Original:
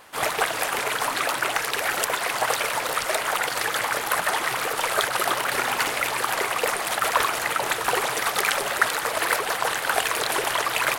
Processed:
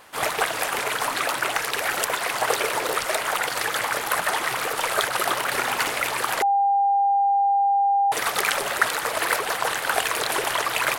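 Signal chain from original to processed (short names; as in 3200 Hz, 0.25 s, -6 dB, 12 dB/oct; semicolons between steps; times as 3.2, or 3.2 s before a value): 2.45–3 bell 390 Hz +10 dB 0.58 oct; 6.42–8.12 bleep 799 Hz -16.5 dBFS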